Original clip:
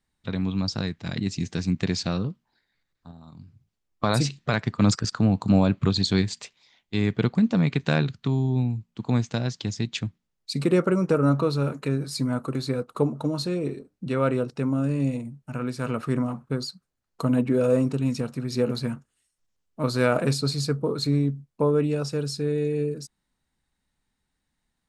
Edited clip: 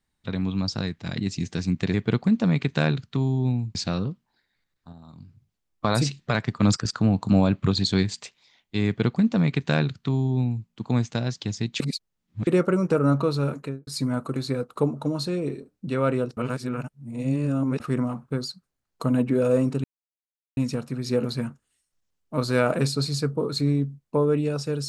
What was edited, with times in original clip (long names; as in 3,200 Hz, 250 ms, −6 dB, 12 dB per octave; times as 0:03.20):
0:07.05–0:08.86: duplicate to 0:01.94
0:09.99–0:10.66: reverse
0:11.74–0:12.06: fade out and dull
0:14.56–0:15.99: reverse
0:18.03: splice in silence 0.73 s